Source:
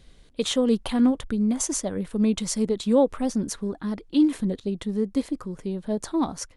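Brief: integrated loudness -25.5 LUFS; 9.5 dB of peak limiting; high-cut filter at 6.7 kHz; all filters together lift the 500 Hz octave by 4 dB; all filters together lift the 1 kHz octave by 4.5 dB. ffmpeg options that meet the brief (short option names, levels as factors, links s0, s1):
-af "lowpass=6700,equalizer=f=500:t=o:g=3.5,equalizer=f=1000:t=o:g=4.5,volume=1.06,alimiter=limit=0.178:level=0:latency=1"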